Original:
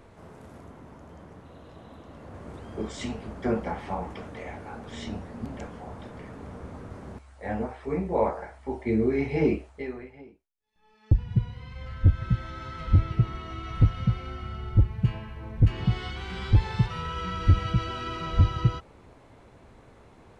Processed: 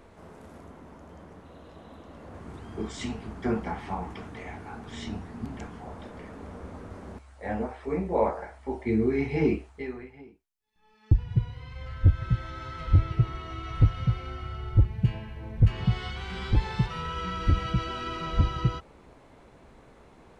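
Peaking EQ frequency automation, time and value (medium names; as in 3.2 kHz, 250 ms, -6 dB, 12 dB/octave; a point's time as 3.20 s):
peaking EQ -11.5 dB 0.29 oct
120 Hz
from 2.40 s 550 Hz
from 5.85 s 130 Hz
from 8.85 s 570 Hz
from 11.13 s 210 Hz
from 14.85 s 1.2 kHz
from 15.61 s 300 Hz
from 16.34 s 100 Hz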